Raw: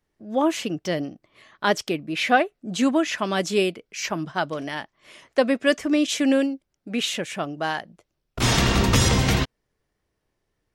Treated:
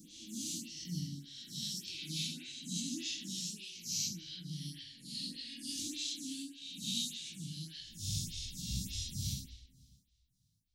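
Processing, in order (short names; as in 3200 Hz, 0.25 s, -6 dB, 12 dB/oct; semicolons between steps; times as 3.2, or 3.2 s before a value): spectral swells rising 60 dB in 1.16 s; elliptic band-stop 170–4000 Hz, stop band 60 dB; low shelf 65 Hz -11 dB; compressor 5:1, threshold -37 dBFS, peak gain reduction 18 dB; tremolo 1 Hz, depth 42%; on a send: darkening echo 0.1 s, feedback 58%, low-pass 2500 Hz, level -7.5 dB; on the sum: two-slope reverb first 0.64 s, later 2.4 s, from -22 dB, DRR -3.5 dB; photocell phaser 1.7 Hz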